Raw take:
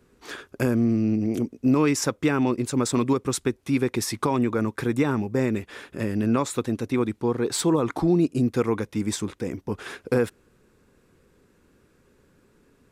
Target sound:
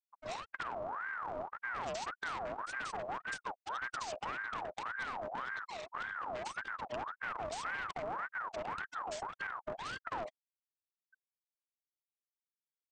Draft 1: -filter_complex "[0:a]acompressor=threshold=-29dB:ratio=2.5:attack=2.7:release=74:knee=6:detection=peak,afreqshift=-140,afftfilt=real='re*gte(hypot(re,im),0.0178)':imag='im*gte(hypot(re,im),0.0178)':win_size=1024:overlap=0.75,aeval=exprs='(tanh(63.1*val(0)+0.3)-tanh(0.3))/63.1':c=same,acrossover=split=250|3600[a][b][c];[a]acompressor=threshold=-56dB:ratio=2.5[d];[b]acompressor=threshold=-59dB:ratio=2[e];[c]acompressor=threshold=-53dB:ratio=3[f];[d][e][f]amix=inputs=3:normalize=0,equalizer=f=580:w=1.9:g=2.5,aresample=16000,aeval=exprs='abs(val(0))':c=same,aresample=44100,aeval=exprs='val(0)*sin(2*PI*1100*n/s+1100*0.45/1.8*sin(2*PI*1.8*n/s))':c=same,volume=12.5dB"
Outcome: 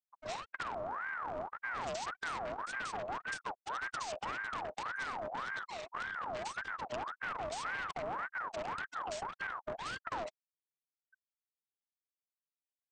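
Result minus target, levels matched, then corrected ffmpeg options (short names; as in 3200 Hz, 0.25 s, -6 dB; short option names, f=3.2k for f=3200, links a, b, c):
compressor: peak gain reduction -3.5 dB
-filter_complex "[0:a]acompressor=threshold=-35dB:ratio=2.5:attack=2.7:release=74:knee=6:detection=peak,afreqshift=-140,afftfilt=real='re*gte(hypot(re,im),0.0178)':imag='im*gte(hypot(re,im),0.0178)':win_size=1024:overlap=0.75,aeval=exprs='(tanh(63.1*val(0)+0.3)-tanh(0.3))/63.1':c=same,acrossover=split=250|3600[a][b][c];[a]acompressor=threshold=-56dB:ratio=2.5[d];[b]acompressor=threshold=-59dB:ratio=2[e];[c]acompressor=threshold=-53dB:ratio=3[f];[d][e][f]amix=inputs=3:normalize=0,equalizer=f=580:w=1.9:g=2.5,aresample=16000,aeval=exprs='abs(val(0))':c=same,aresample=44100,aeval=exprs='val(0)*sin(2*PI*1100*n/s+1100*0.45/1.8*sin(2*PI*1.8*n/s))':c=same,volume=12.5dB"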